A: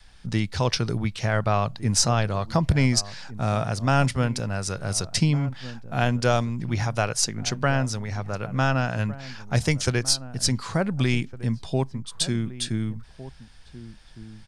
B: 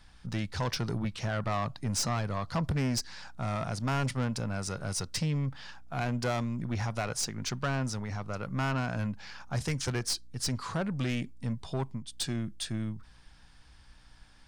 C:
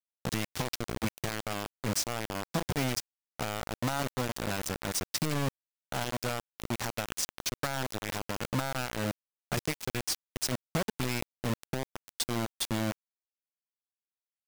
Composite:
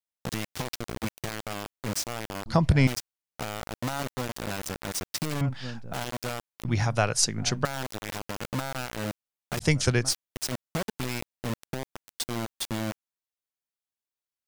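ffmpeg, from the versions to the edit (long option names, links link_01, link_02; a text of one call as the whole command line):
ffmpeg -i take0.wav -i take1.wav -i take2.wav -filter_complex "[0:a]asplit=4[link_01][link_02][link_03][link_04];[2:a]asplit=5[link_05][link_06][link_07][link_08][link_09];[link_05]atrim=end=2.462[link_10];[link_01]atrim=start=2.458:end=2.872[link_11];[link_06]atrim=start=2.868:end=5.412[link_12];[link_02]atrim=start=5.408:end=5.932[link_13];[link_07]atrim=start=5.928:end=6.652[link_14];[link_03]atrim=start=6.648:end=7.652[link_15];[link_08]atrim=start=7.648:end=9.66[link_16];[link_04]atrim=start=9.6:end=10.13[link_17];[link_09]atrim=start=10.07[link_18];[link_10][link_11]acrossfade=duration=0.004:curve1=hsin:curve2=hsin[link_19];[link_19][link_12]acrossfade=duration=0.004:curve1=hsin:curve2=hsin[link_20];[link_20][link_13]acrossfade=duration=0.004:curve1=hsin:curve2=hsin[link_21];[link_21][link_14]acrossfade=duration=0.004:curve1=hsin:curve2=hsin[link_22];[link_22][link_15]acrossfade=duration=0.004:curve1=hsin:curve2=hsin[link_23];[link_23][link_16]acrossfade=duration=0.004:curve1=hsin:curve2=hsin[link_24];[link_24][link_17]acrossfade=duration=0.06:curve1=tri:curve2=tri[link_25];[link_25][link_18]acrossfade=duration=0.06:curve1=tri:curve2=tri" out.wav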